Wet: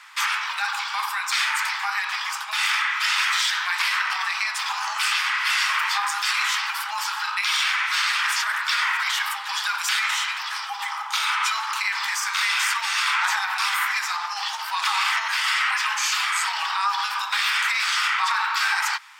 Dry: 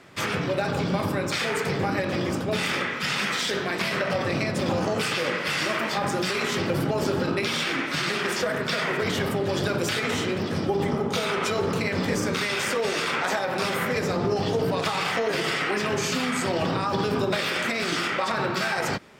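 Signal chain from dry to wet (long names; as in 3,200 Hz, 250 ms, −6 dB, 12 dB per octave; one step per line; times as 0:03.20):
Butterworth high-pass 870 Hz 72 dB per octave
in parallel at −2 dB: brickwall limiter −24.5 dBFS, peak gain reduction 9.5 dB
on the sum: level +2.5 dB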